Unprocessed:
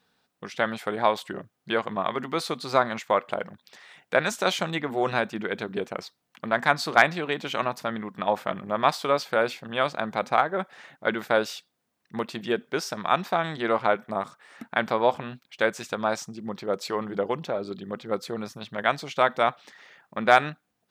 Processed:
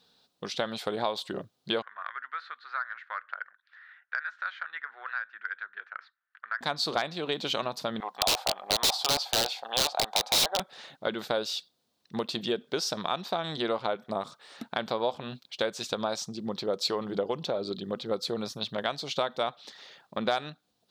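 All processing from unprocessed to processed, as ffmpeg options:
ffmpeg -i in.wav -filter_complex "[0:a]asettb=1/sr,asplit=3[link_01][link_02][link_03];[link_01]atrim=end=1.824[link_04];[link_02]atrim=start=1.82:end=6.61,asetpts=PTS-STARTPTS,afade=type=in:duration=0.004:curve=qsin,afade=type=out:start_time=4.786:duration=0.004:curve=qsin,asuperpass=centerf=1600:order=4:qfactor=3.3,acontrast=78[link_05];[link_03]atrim=start=6.606[link_06];[link_04][link_05]acrossfade=duration=0.004:curve1=hsin:curve2=qsin[link_07];[link_07][link_06]acrossfade=duration=0.004:curve1=qsin:curve2=hsin,asettb=1/sr,asplit=3[link_08][link_09][link_10];[link_08]atrim=end=8.004[link_11];[link_09]atrim=start=8:end=10.6,asetpts=PTS-STARTPTS,afade=type=in:duration=0.004:curve=qsin,afade=type=out:start_time=2.596:duration=0.004:curve=qsin,highpass=frequency=770:width_type=q:width=5.8,aeval=exprs='(mod(5.01*val(0)+1,2)-1)/5.01':channel_layout=same[link_12];[link_10]atrim=start=10.596[link_13];[link_11][link_12]acrossfade=duration=0.004:curve1=hsin:curve2=qsin[link_14];[link_14][link_13]acrossfade=duration=0.004:curve1=qsin:curve2=hsin,acompressor=threshold=-29dB:ratio=3,equalizer=frequency=500:width_type=o:width=1:gain=3,equalizer=frequency=2000:width_type=o:width=1:gain=-7,equalizer=frequency=4000:width_type=o:width=1:gain=12" out.wav

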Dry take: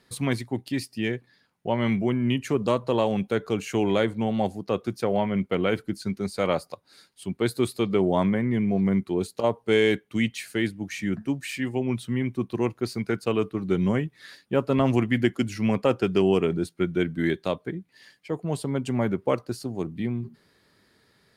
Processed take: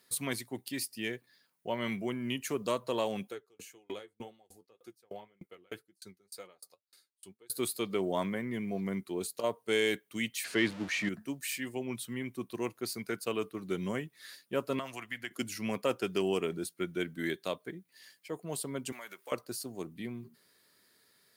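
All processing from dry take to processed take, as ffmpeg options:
ffmpeg -i in.wav -filter_complex "[0:a]asettb=1/sr,asplit=3[link_01][link_02][link_03];[link_01]atrim=end=3.294[link_04];[link_02]atrim=start=3.29:end=7.5,asetpts=PTS-STARTPTS,afade=type=in:duration=0.004:curve=qsin,afade=type=out:start_time=4.206:duration=0.004:curve=qsin,aecho=1:1:2.4:0.36,atrim=end_sample=185661,flanger=delay=5.5:depth=6:regen=44:speed=1.9:shape=sinusoidal,aeval=exprs='val(0)*pow(10,-37*if(lt(mod(3.3*n/s,1),2*abs(3.3)/1000),1-mod(3.3*n/s,1)/(2*abs(3.3)/1000),(mod(3.3*n/s,1)-2*abs(3.3)/1000)/(1-2*abs(3.3)/1000))/20)':channel_layout=same[link_05];[link_03]atrim=start=7.496[link_06];[link_04][link_05]acrossfade=duration=0.004:curve1=hsin:curve2=qsin[link_07];[link_07][link_06]acrossfade=duration=0.004:curve1=qsin:curve2=hsin,asettb=1/sr,asplit=3[link_08][link_09][link_10];[link_08]atrim=end=10.444[link_11];[link_09]atrim=start=10.44:end=11.09,asetpts=PTS-STARTPTS,afade=type=in:duration=0.004:curve=qsin,afade=type=out:start_time=0.646:duration=0.004:curve=qsin,aeval=exprs='val(0)+0.5*0.015*sgn(val(0))':channel_layout=same,lowpass=3600,acontrast=50[link_12];[link_10]atrim=start=11.086[link_13];[link_11][link_12]acrossfade=duration=0.004:curve1=hsin:curve2=qsin[link_14];[link_14][link_13]acrossfade=duration=0.004:curve1=qsin:curve2=hsin,asettb=1/sr,asplit=3[link_15][link_16][link_17];[link_15]atrim=end=14.794[link_18];[link_16]atrim=start=14.79:end=15.31,asetpts=PTS-STARTPTS,afade=type=in:duration=0.004:curve=qsin,afade=type=out:start_time=0.516:duration=0.004:curve=qsin,equalizer=frequency=340:width_type=o:width=2.2:gain=-6.5,acrossover=split=590|3000[link_19][link_20][link_21];[link_19]acompressor=threshold=-37dB:ratio=4[link_22];[link_20]acompressor=threshold=-30dB:ratio=4[link_23];[link_21]acompressor=threshold=-50dB:ratio=4[link_24];[link_22][link_23][link_24]amix=inputs=3:normalize=0[link_25];[link_17]atrim=start=15.306[link_26];[link_18][link_25]acrossfade=duration=0.004:curve1=hsin:curve2=qsin[link_27];[link_27][link_26]acrossfade=duration=0.004:curve1=qsin:curve2=hsin,asettb=1/sr,asplit=3[link_28][link_29][link_30];[link_28]atrim=end=18.924[link_31];[link_29]atrim=start=18.92:end=19.32,asetpts=PTS-STARTPTS,afade=type=in:duration=0.004:curve=qsin,afade=type=out:start_time=0.396:duration=0.004:curve=qsin,highpass=frequency=670:poles=1,tiltshelf=frequency=850:gain=-9,acompressor=threshold=-36dB:ratio=3:attack=3.2:release=140:knee=1:detection=peak[link_32];[link_30]atrim=start=19.316[link_33];[link_31][link_32]acrossfade=duration=0.004:curve1=hsin:curve2=qsin[link_34];[link_34][link_33]acrossfade=duration=0.004:curve1=qsin:curve2=hsin,aemphasis=mode=production:type=bsi,bandreject=frequency=820:width=12,volume=-7dB" out.wav

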